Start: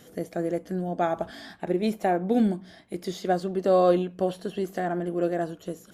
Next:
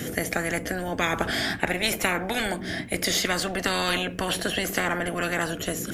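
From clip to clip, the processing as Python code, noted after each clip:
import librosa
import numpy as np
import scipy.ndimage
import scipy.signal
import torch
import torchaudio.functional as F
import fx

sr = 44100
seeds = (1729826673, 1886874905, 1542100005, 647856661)

y = fx.graphic_eq(x, sr, hz=(125, 250, 500, 1000, 2000, 4000), db=(5, 9, -4, -8, 5, -5))
y = fx.spectral_comp(y, sr, ratio=10.0)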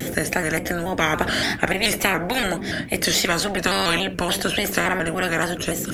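y = fx.vibrato_shape(x, sr, shape='square', rate_hz=3.5, depth_cents=100.0)
y = y * librosa.db_to_amplitude(4.5)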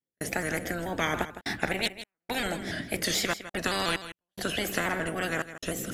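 y = fx.step_gate(x, sr, bpm=72, pattern='.xxxxx.xx.', floor_db=-60.0, edge_ms=4.5)
y = y + 10.0 ** (-13.0 / 20.0) * np.pad(y, (int(159 * sr / 1000.0), 0))[:len(y)]
y = y * librosa.db_to_amplitude(-8.0)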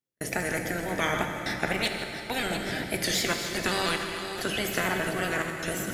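y = fx.reverse_delay(x, sr, ms=367, wet_db=-10)
y = fx.rev_fdn(y, sr, rt60_s=3.8, lf_ratio=1.0, hf_ratio=0.8, size_ms=46.0, drr_db=4.0)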